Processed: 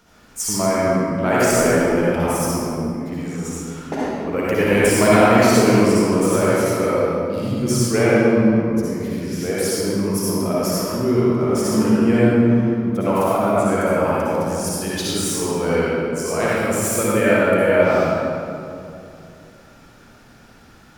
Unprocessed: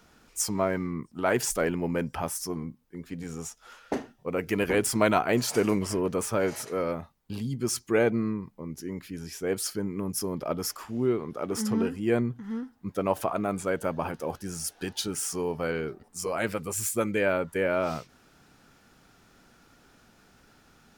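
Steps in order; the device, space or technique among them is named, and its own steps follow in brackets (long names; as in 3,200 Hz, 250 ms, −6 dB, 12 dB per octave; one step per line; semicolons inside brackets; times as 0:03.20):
stairwell (convolution reverb RT60 2.6 s, pre-delay 52 ms, DRR −8.5 dB)
level +2 dB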